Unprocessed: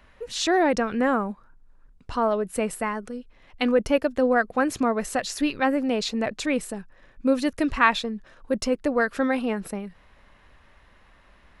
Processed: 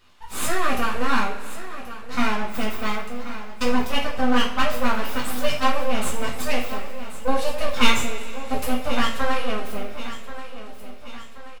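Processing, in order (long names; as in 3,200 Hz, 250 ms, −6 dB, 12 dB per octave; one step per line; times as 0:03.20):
high-pass filter 210 Hz 24 dB per octave
comb filter 0.8 ms, depth 82%
full-wave rectification
repeating echo 1,081 ms, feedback 50%, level −13.5 dB
coupled-rooms reverb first 0.39 s, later 2.6 s, from −18 dB, DRR −5 dB
level −3.5 dB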